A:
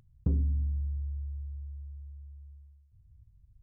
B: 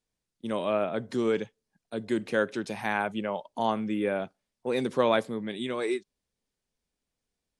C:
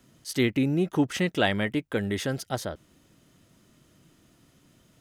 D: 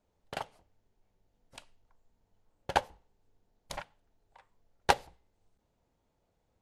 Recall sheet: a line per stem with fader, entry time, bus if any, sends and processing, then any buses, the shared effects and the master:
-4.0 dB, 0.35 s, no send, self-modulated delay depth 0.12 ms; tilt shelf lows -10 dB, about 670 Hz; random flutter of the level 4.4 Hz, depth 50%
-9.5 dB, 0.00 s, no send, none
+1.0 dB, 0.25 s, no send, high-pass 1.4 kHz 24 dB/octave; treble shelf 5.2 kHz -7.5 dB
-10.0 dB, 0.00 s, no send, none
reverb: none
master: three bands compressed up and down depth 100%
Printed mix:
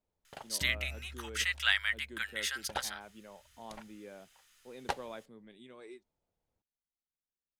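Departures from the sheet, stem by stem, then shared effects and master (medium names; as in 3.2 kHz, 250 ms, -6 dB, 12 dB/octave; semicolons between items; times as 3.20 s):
stem B -9.5 dB -> -21.0 dB; stem C: missing treble shelf 5.2 kHz -7.5 dB; master: missing three bands compressed up and down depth 100%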